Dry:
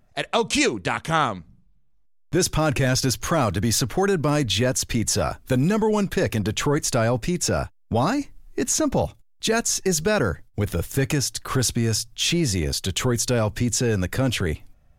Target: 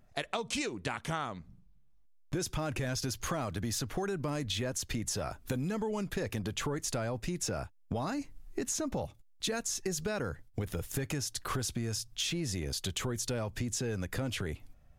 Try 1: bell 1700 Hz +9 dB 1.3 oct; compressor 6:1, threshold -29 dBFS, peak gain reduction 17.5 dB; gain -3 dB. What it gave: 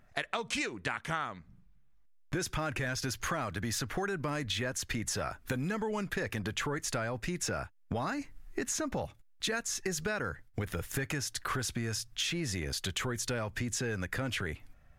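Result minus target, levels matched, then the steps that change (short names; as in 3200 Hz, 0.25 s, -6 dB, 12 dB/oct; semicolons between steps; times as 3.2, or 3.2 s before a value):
2000 Hz band +5.0 dB
remove: bell 1700 Hz +9 dB 1.3 oct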